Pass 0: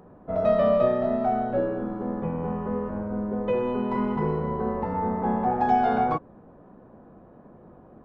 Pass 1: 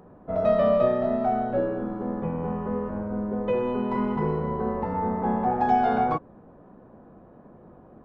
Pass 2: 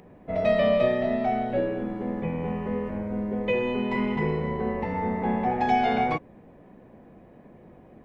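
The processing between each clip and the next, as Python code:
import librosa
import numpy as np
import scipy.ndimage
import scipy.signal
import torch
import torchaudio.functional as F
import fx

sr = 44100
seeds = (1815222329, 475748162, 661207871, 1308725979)

y1 = x
y2 = fx.high_shelf_res(y1, sr, hz=1700.0, db=7.0, q=3.0)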